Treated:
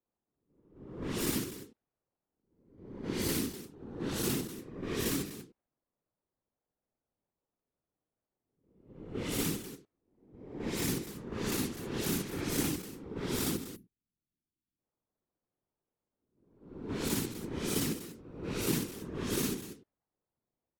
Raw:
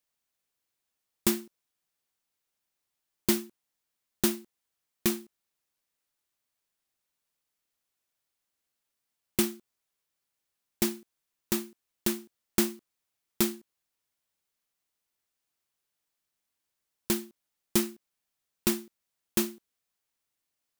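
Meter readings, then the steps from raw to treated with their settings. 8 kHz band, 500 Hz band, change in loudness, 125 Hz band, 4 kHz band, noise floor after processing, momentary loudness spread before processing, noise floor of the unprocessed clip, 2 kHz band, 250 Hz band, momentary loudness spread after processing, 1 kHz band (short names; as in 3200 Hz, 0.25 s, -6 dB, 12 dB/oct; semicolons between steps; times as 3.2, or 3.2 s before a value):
-2.5 dB, -1.0 dB, -4.5 dB, +5.5 dB, -1.5 dB, under -85 dBFS, 12 LU, -84 dBFS, -0.5 dB, -2.0 dB, 16 LU, 0.0 dB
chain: spectral swells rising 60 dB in 0.81 s; in parallel at -1 dB: level quantiser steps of 19 dB; on the sum: low-pass opened by the level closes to 610 Hz, open at -21 dBFS; spectral gain 13.51–14.78, 320–10000 Hz -19 dB; soft clip -17 dBFS, distortion -14 dB; reverse; compressor, threshold -33 dBFS, peak gain reduction 11.5 dB; reverse; loudspeakers at several distances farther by 20 m 0 dB, 86 m -11 dB; whisperiser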